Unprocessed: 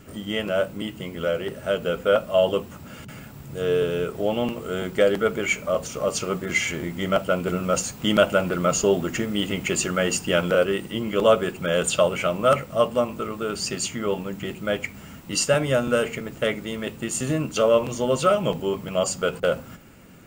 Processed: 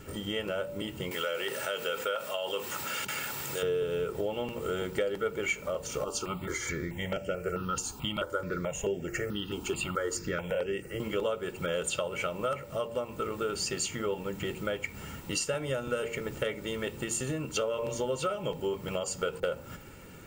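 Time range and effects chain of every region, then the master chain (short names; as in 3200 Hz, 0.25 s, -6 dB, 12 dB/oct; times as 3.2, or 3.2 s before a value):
1.11–3.63 HPF 1500 Hz 6 dB/oct + fast leveller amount 50%
6.04–11 high shelf 7600 Hz -5 dB + step phaser 4.6 Hz 540–3900 Hz
whole clip: de-hum 115.7 Hz, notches 9; compressor 6:1, threshold -30 dBFS; comb 2.2 ms, depth 40%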